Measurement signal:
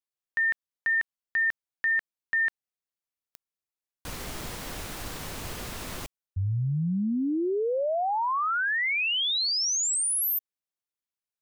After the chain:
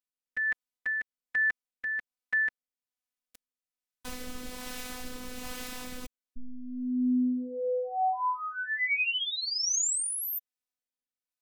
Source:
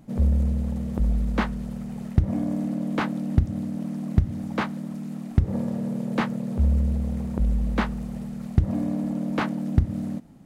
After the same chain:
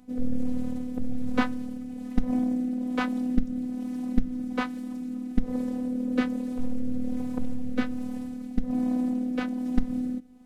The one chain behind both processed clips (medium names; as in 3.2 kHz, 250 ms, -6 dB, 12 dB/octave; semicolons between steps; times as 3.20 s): rotary cabinet horn 1.2 Hz; robot voice 250 Hz; trim +2 dB